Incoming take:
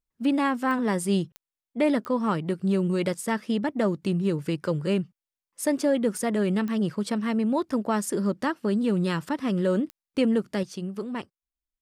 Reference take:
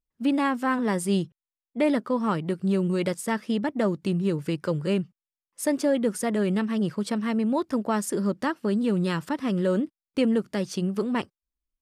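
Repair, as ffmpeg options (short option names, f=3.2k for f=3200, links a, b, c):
-af "adeclick=t=4,asetnsamples=n=441:p=0,asendcmd='10.63 volume volume 6dB',volume=0dB"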